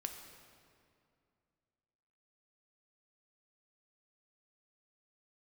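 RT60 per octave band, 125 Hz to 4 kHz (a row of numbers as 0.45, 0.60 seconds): 2.8, 2.7, 2.5, 2.3, 2.0, 1.7 seconds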